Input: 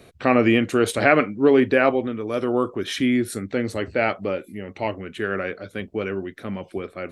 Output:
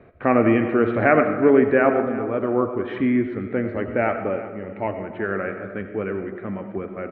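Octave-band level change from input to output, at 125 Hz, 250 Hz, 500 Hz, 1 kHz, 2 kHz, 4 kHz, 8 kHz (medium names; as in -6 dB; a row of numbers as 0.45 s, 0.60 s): +1.0 dB, +1.0 dB, +1.0 dB, +1.0 dB, -1.5 dB, under -15 dB, under -40 dB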